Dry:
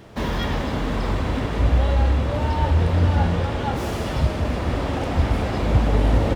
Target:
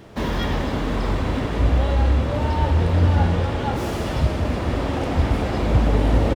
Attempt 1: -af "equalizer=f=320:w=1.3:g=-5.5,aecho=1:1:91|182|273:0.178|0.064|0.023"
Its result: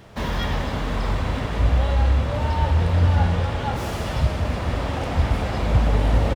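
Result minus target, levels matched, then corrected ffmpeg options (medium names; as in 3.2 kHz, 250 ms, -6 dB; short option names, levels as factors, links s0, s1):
250 Hz band -3.5 dB
-af "equalizer=f=320:w=1.3:g=2,aecho=1:1:91|182|273:0.178|0.064|0.023"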